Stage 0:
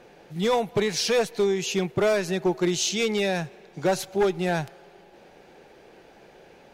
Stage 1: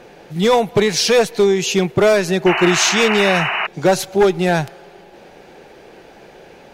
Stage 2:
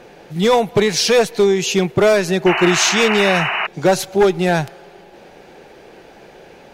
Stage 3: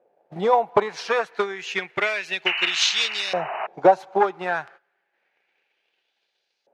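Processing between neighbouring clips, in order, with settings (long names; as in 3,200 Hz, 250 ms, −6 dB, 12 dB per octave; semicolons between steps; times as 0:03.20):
sound drawn into the spectrogram noise, 0:02.46–0:03.67, 620–3,000 Hz −29 dBFS; level +9 dB
no processing that can be heard
noise gate −33 dBFS, range −18 dB; transient designer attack +10 dB, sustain −2 dB; auto-filter band-pass saw up 0.3 Hz 570–4,900 Hz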